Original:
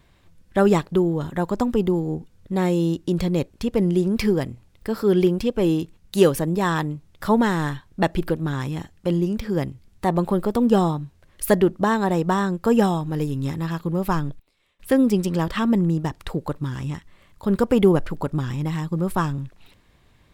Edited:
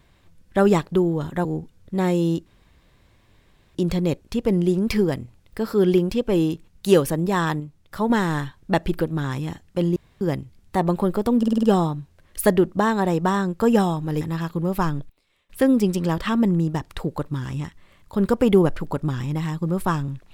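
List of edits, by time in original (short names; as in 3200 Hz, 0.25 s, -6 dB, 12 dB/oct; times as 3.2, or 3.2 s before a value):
1.45–2.03 cut
3.04 insert room tone 1.29 s
6.89–7.39 gain -4.5 dB
9.25–9.5 room tone
10.67 stutter 0.05 s, 6 plays
13.25–13.51 cut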